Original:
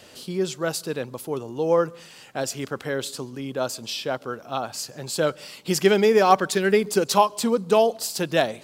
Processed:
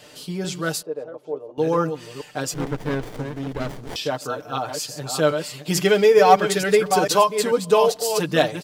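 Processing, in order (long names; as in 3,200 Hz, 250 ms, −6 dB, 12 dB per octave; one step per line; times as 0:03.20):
delay that plays each chunk backwards 442 ms, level −7.5 dB
0:00.82–0:01.58: resonant band-pass 550 Hz, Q 2.5
comb filter 6.7 ms, depth 73%
0:02.54–0:03.96: windowed peak hold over 33 samples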